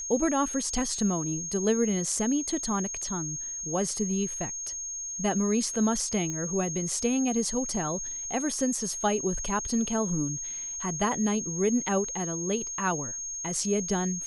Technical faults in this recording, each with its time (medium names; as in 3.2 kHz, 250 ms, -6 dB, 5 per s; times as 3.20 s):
whine 6.5 kHz -33 dBFS
6.30 s: pop -22 dBFS